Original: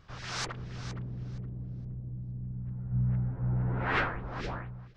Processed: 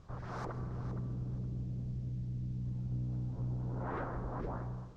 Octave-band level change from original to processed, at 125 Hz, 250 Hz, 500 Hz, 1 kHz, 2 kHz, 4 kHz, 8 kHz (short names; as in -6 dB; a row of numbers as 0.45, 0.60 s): -4.0 dB, -3.0 dB, -3.0 dB, -7.0 dB, under -15 dB, under -20 dB, n/a